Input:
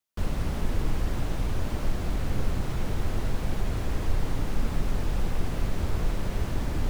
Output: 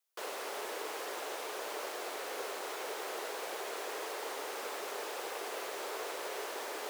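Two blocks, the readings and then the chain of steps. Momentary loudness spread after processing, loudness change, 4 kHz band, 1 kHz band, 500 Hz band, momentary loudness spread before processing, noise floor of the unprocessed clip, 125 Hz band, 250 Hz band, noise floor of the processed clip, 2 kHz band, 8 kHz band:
0 LU, −8.0 dB, +0.5 dB, 0.0 dB, −1.5 dB, 1 LU, −32 dBFS, below −40 dB, −17.5 dB, −42 dBFS, 0.0 dB, +2.0 dB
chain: Chebyshev high-pass filter 410 Hz, order 4
high-shelf EQ 6,000 Hz +4.5 dB

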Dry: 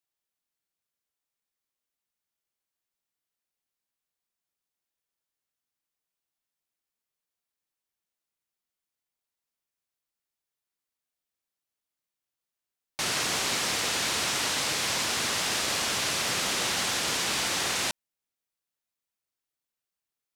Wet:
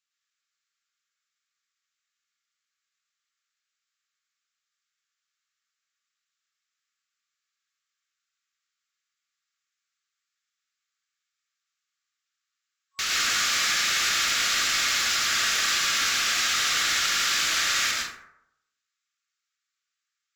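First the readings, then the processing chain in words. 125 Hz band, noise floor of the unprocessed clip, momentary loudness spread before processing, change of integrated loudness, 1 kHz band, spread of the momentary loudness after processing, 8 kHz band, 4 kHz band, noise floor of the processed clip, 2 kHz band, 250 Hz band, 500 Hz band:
−8.0 dB, below −85 dBFS, 3 LU, +4.0 dB, +2.0 dB, 3 LU, +3.5 dB, +4.5 dB, −85 dBFS, +6.0 dB, −7.5 dB, −8.5 dB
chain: brick-wall band-pass 1,100–7,800 Hz
soft clipping −29.5 dBFS, distortion −11 dB
dense smooth reverb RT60 0.78 s, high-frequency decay 0.45×, pre-delay 95 ms, DRR −2 dB
level +6 dB

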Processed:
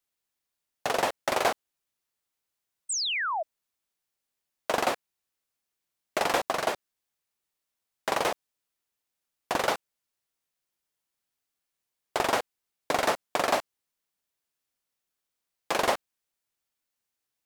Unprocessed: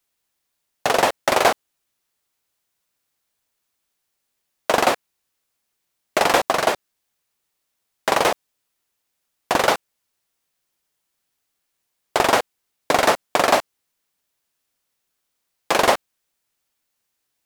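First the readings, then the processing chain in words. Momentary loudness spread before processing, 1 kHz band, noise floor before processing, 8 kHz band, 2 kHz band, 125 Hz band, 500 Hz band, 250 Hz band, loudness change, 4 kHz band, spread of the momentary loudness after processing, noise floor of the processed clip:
10 LU, −8.5 dB, −77 dBFS, −6.5 dB, −8.0 dB, −9.0 dB, −9.0 dB, −9.0 dB, −9.0 dB, −7.0 dB, 11 LU, −85 dBFS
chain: sound drawn into the spectrogram fall, 0:02.89–0:03.43, 600–8,700 Hz −20 dBFS
level −9 dB

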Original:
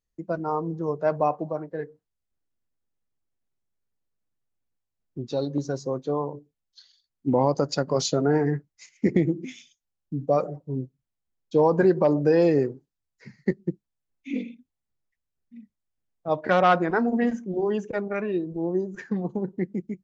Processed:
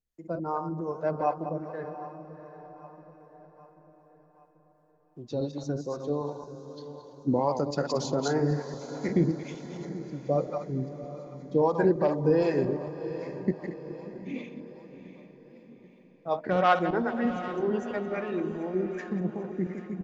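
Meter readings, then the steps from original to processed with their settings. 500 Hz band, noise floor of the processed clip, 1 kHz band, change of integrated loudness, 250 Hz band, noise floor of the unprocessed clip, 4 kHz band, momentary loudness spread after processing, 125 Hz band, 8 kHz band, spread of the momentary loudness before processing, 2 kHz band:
−4.0 dB, −60 dBFS, −3.0 dB, −4.5 dB, −4.0 dB, −84 dBFS, −5.5 dB, 19 LU, −2.5 dB, can't be measured, 14 LU, −4.0 dB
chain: feedback delay that plays each chunk backwards 115 ms, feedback 43%, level −7 dB
repeating echo 786 ms, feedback 53%, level −18.5 dB
two-band tremolo in antiphase 2.6 Hz, depth 70%, crossover 530 Hz
feedback delay with all-pass diffusion 689 ms, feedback 47%, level −13 dB
level −1.5 dB

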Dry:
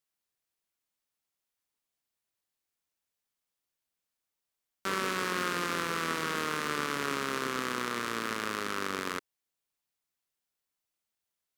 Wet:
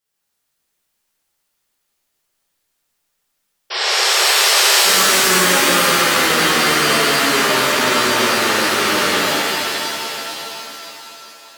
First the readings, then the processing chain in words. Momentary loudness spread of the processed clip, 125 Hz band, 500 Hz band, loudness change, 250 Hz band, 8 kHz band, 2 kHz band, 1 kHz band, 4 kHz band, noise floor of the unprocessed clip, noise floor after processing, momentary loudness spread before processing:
15 LU, +15.0 dB, +18.5 dB, +19.0 dB, +15.5 dB, +26.0 dB, +19.5 dB, +17.0 dB, +25.0 dB, below −85 dBFS, −72 dBFS, 3 LU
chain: sound drawn into the spectrogram noise, 0:03.70–0:04.81, 360–5,700 Hz −30 dBFS
reverb with rising layers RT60 3.3 s, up +7 semitones, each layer −2 dB, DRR −10.5 dB
level +3.5 dB

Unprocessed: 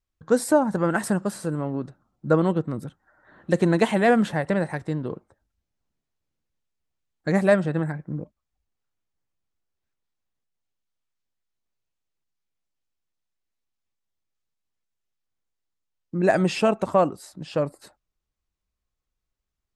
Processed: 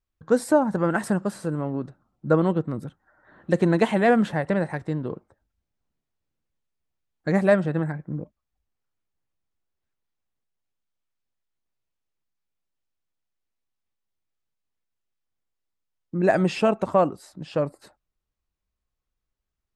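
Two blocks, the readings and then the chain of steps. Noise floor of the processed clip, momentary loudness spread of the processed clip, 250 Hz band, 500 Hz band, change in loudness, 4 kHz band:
−83 dBFS, 15 LU, 0.0 dB, 0.0 dB, 0.0 dB, −2.5 dB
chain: high-shelf EQ 4,500 Hz −6.5 dB

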